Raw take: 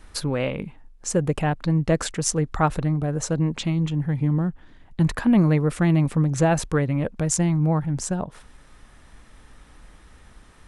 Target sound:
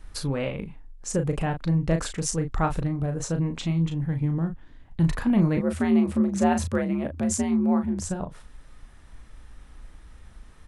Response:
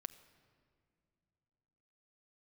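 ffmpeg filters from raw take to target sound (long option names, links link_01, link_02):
-filter_complex "[0:a]lowshelf=frequency=93:gain=9,asettb=1/sr,asplit=3[link_01][link_02][link_03];[link_01]atrim=end=5.574[link_04];[link_02]atrim=start=5.57:end=8.05,asetpts=PTS-STARTPTS,afade=type=in:duration=0.004:curve=qsin,afade=type=out:start_time=2.476:duration=0.004:curve=qsin,afreqshift=62[link_05];[link_03]atrim=start=8.046[link_06];[link_04][link_05]acrossfade=duration=0.004:curve1=hsin:curve2=qsin[link_07];[link_07][link_06]acrossfade=duration=0.004:curve1=qsin:curve2=hsin,asplit=2[link_08][link_09];[link_09]adelay=36,volume=-7dB[link_10];[link_08][link_10]amix=inputs=2:normalize=0,volume=-5dB"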